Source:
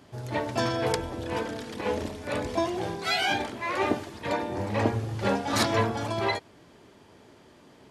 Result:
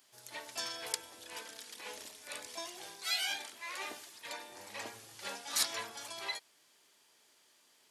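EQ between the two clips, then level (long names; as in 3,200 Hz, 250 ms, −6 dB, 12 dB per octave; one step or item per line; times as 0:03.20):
first difference
+1.0 dB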